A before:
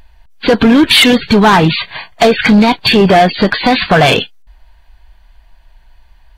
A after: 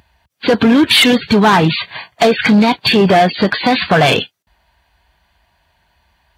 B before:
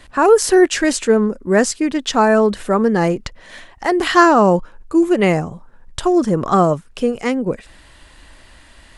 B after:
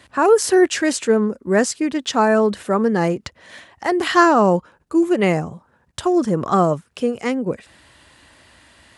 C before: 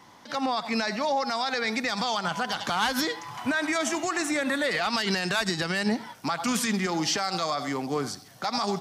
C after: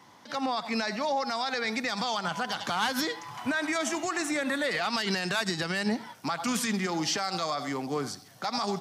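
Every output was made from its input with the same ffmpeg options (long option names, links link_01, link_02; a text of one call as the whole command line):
ffmpeg -i in.wav -af "highpass=frequency=72:width=0.5412,highpass=frequency=72:width=1.3066,volume=-2.5dB" out.wav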